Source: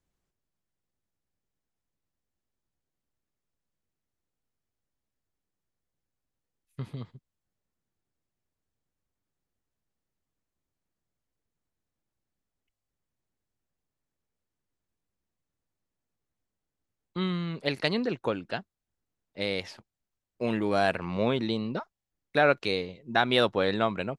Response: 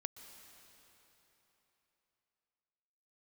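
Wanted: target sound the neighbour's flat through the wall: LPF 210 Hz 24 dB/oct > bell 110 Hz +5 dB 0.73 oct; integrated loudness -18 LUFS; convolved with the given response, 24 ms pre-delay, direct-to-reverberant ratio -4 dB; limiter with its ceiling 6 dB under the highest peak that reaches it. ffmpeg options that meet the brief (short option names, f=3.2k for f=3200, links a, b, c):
-filter_complex "[0:a]alimiter=limit=-13.5dB:level=0:latency=1,asplit=2[a][b];[1:a]atrim=start_sample=2205,adelay=24[c];[b][c]afir=irnorm=-1:irlink=0,volume=7dB[d];[a][d]amix=inputs=2:normalize=0,lowpass=f=210:w=0.5412,lowpass=f=210:w=1.3066,equalizer=f=110:t=o:w=0.73:g=5,volume=14.5dB"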